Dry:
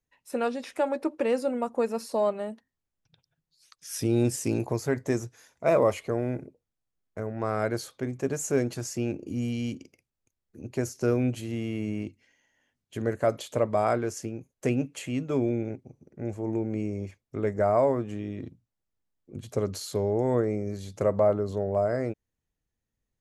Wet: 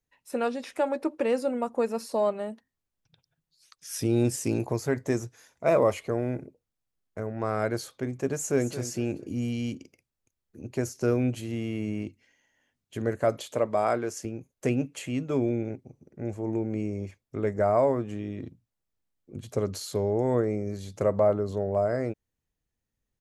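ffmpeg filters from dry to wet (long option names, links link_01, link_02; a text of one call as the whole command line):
ffmpeg -i in.wav -filter_complex "[0:a]asplit=2[link_01][link_02];[link_02]afade=type=in:start_time=8.37:duration=0.01,afade=type=out:start_time=8.8:duration=0.01,aecho=0:1:220|440|660:0.251189|0.0753566|0.022607[link_03];[link_01][link_03]amix=inputs=2:normalize=0,asettb=1/sr,asplit=3[link_04][link_05][link_06];[link_04]atrim=end=13.524[link_07];[link_05]atrim=start=13.52:end=14.25,asetpts=PTS-STARTPTS,afade=type=in:duration=0.004:curve=qsin,afade=type=out:start_time=0.726:duration=0.004:curve=qsin,highpass=frequency=200:poles=1[link_08];[link_06]atrim=start=14.246[link_09];[link_07][link_08]acrossfade=duration=0.004:curve1=hsin:curve2=qsin[link_10];[link_10][link_09]acrossfade=duration=0.004:curve1=qsin:curve2=hsin" out.wav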